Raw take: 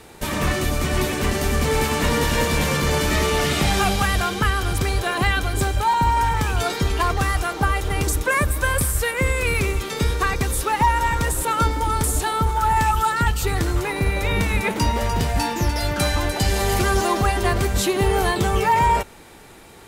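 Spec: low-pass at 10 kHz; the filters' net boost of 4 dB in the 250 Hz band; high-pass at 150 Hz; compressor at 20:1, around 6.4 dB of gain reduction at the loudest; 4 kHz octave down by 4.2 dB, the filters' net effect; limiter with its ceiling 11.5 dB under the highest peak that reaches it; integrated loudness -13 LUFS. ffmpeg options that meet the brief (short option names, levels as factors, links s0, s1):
-af "highpass=150,lowpass=10000,equalizer=f=250:t=o:g=6.5,equalizer=f=4000:t=o:g=-5.5,acompressor=threshold=0.1:ratio=20,volume=7.08,alimiter=limit=0.562:level=0:latency=1"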